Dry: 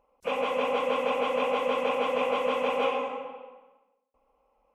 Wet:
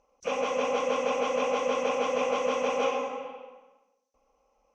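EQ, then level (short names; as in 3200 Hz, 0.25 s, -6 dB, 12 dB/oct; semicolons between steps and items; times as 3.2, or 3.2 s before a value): notch 940 Hz, Q 8.5; dynamic EQ 3400 Hz, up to -4 dB, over -44 dBFS, Q 0.79; synth low-pass 6000 Hz, resonance Q 10; 0.0 dB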